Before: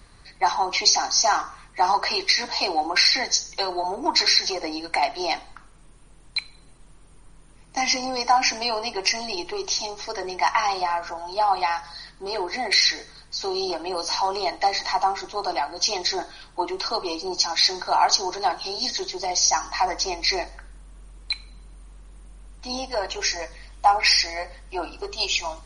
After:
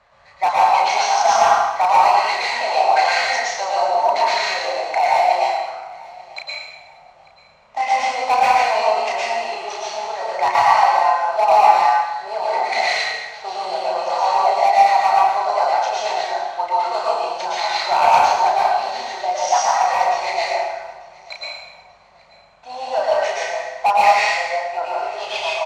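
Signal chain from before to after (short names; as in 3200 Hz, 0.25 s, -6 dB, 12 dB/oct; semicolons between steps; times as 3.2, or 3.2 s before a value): median filter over 9 samples; LPF 6500 Hz 24 dB/oct; resonant low shelf 450 Hz -11.5 dB, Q 3; doubler 33 ms -4.5 dB; hard clip -10.5 dBFS, distortion -15 dB; HPF 59 Hz; notches 60/120/180/240/300/360 Hz; feedback echo 0.889 s, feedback 34%, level -22.5 dB; plate-style reverb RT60 1.1 s, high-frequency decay 0.9×, pre-delay 0.1 s, DRR -5.5 dB; gain -1.5 dB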